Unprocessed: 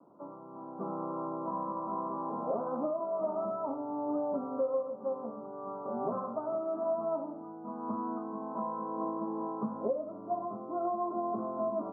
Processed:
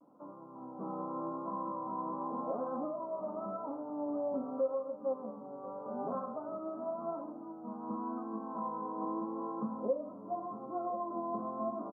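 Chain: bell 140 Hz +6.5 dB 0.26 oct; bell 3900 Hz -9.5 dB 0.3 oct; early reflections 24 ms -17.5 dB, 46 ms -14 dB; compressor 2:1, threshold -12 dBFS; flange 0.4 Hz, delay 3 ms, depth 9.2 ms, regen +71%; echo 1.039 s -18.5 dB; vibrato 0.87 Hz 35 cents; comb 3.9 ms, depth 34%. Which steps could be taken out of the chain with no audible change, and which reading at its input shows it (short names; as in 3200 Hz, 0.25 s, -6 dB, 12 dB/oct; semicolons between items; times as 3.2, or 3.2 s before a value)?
bell 3900 Hz: input band ends at 1400 Hz; compressor, threshold -12 dBFS: input peak -19.5 dBFS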